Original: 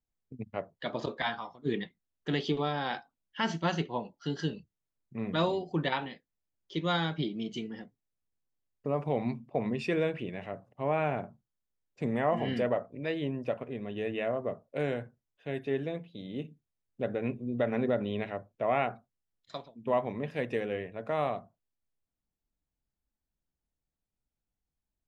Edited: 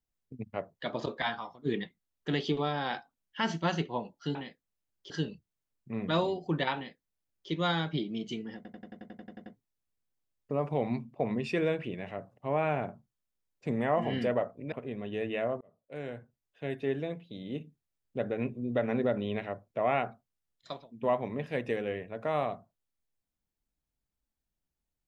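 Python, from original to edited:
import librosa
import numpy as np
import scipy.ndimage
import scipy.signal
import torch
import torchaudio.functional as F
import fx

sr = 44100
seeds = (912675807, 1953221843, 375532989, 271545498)

y = fx.edit(x, sr, fx.duplicate(start_s=6.0, length_s=0.75, to_s=4.35),
    fx.stutter(start_s=7.81, slice_s=0.09, count=11),
    fx.cut(start_s=13.07, length_s=0.49),
    fx.fade_in_span(start_s=14.45, length_s=1.03), tone=tone)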